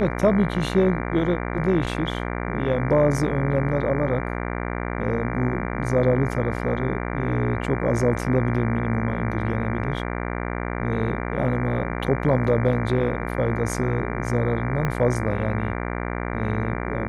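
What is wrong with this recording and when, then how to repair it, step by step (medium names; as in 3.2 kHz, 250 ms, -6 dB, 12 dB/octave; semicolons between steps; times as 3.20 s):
buzz 60 Hz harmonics 39 -28 dBFS
14.85 s: pop -12 dBFS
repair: de-click; de-hum 60 Hz, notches 39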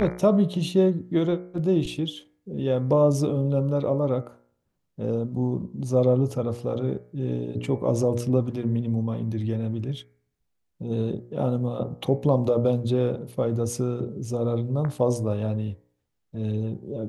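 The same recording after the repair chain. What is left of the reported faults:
14.85 s: pop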